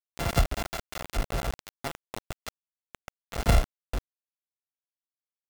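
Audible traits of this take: a buzz of ramps at a fixed pitch in blocks of 64 samples; tremolo saw up 3.2 Hz, depth 60%; a quantiser's noise floor 6-bit, dither none

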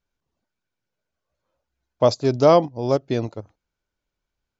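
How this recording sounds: noise floor -83 dBFS; spectral tilt -6.0 dB/octave

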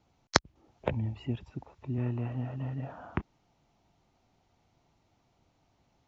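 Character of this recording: noise floor -72 dBFS; spectral tilt -5.0 dB/octave

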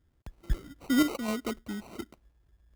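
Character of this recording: random-step tremolo 3.9 Hz; phasing stages 4, 0.98 Hz, lowest notch 590–2100 Hz; aliases and images of a low sample rate 1.7 kHz, jitter 0%

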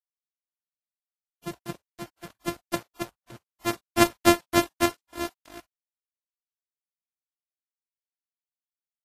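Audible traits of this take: a buzz of ramps at a fixed pitch in blocks of 128 samples; random-step tremolo; a quantiser's noise floor 8-bit, dither none; Vorbis

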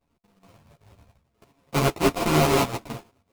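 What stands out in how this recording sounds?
a buzz of ramps at a fixed pitch in blocks of 64 samples; tremolo saw up 5.3 Hz, depth 60%; aliases and images of a low sample rate 1.7 kHz, jitter 20%; a shimmering, thickened sound

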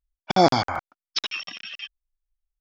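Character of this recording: noise floor -95 dBFS; spectral tilt -3.0 dB/octave

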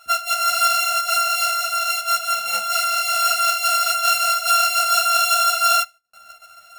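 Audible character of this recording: a buzz of ramps at a fixed pitch in blocks of 32 samples; tremolo saw up 6 Hz, depth 35%; a shimmering, thickened sound

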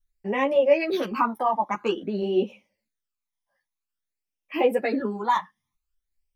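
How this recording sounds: phasing stages 12, 0.5 Hz, lowest notch 440–1500 Hz; tremolo saw down 1.8 Hz, depth 30%; a shimmering, thickened sound

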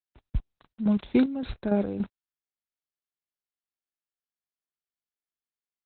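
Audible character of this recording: a quantiser's noise floor 8-bit, dither none; chopped level 3.5 Hz, depth 60%, duty 40%; Opus

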